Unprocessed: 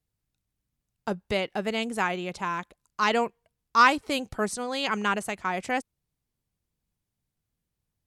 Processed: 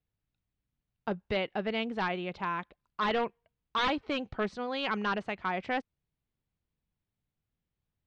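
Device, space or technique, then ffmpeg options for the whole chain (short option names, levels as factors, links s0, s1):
synthesiser wavefolder: -af "aeval=exprs='0.112*(abs(mod(val(0)/0.112+3,4)-2)-1)':c=same,lowpass=f=3800:w=0.5412,lowpass=f=3800:w=1.3066,volume=0.708"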